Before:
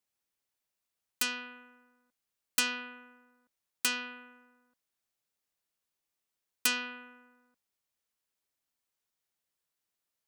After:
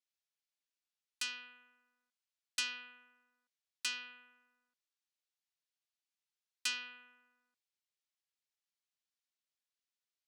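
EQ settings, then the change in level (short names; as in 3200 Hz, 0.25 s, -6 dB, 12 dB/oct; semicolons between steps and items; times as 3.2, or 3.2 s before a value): LPF 4000 Hz 12 dB/oct; differentiator; bell 210 Hz +6 dB 1.2 oct; +3.5 dB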